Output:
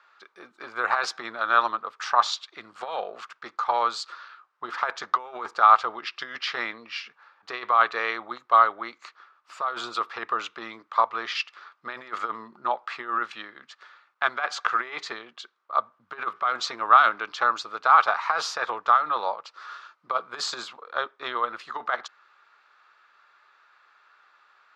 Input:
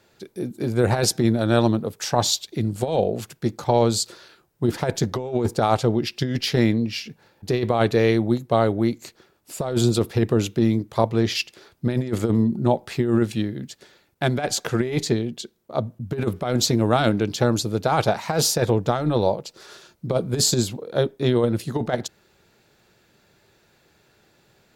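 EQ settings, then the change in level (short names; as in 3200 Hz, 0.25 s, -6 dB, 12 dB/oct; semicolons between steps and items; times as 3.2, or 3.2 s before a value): resonant high-pass 1200 Hz, resonance Q 6.3; air absorption 160 m; high shelf 5900 Hz -5 dB; 0.0 dB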